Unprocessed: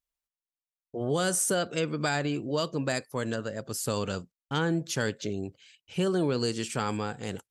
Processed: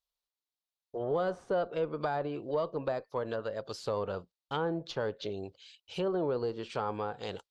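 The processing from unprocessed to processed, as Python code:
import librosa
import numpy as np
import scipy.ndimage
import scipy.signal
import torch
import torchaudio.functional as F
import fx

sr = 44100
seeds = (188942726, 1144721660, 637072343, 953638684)

y = fx.graphic_eq(x, sr, hz=(125, 250, 500, 1000, 2000, 4000, 8000), db=(-7, -8, 4, 4, -6, 10, -4))
y = fx.cheby_harmonics(y, sr, harmonics=(5, 6), levels_db=(-25, -30), full_scale_db=-11.5)
y = fx.env_lowpass_down(y, sr, base_hz=1200.0, full_db=-24.0)
y = y * librosa.db_to_amplitude(-4.5)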